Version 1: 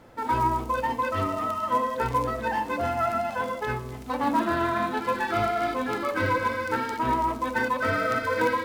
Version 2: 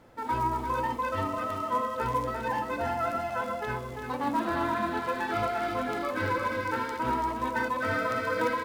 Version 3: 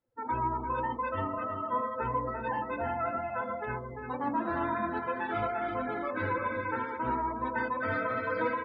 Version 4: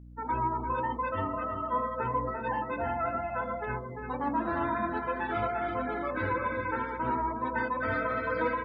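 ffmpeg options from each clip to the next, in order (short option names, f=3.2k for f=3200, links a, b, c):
-af "aecho=1:1:346:0.531,volume=-4.5dB"
-af "afftdn=nr=30:nf=-40,volume=-2.5dB"
-af "aeval=exprs='val(0)+0.00398*(sin(2*PI*60*n/s)+sin(2*PI*2*60*n/s)/2+sin(2*PI*3*60*n/s)/3+sin(2*PI*4*60*n/s)/4+sin(2*PI*5*60*n/s)/5)':c=same,volume=1dB"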